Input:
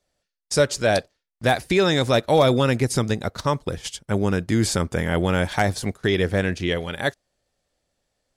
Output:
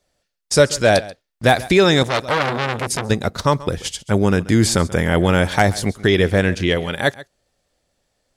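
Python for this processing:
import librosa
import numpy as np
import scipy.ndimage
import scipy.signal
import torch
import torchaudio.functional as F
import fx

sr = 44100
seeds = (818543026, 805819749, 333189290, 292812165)

y = x + 10.0 ** (-19.0 / 20.0) * np.pad(x, (int(135 * sr / 1000.0), 0))[:len(x)]
y = fx.transformer_sat(y, sr, knee_hz=2500.0, at=(2.03, 3.1))
y = y * librosa.db_to_amplitude(5.5)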